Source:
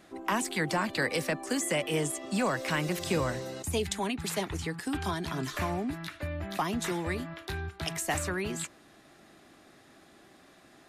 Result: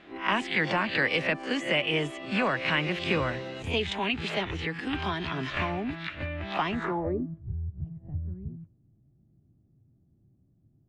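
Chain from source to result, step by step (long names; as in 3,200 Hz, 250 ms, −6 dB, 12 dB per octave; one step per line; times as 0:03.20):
peak hold with a rise ahead of every peak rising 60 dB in 0.30 s
low-pass filter sweep 2,800 Hz → 120 Hz, 0:06.67–0:07.45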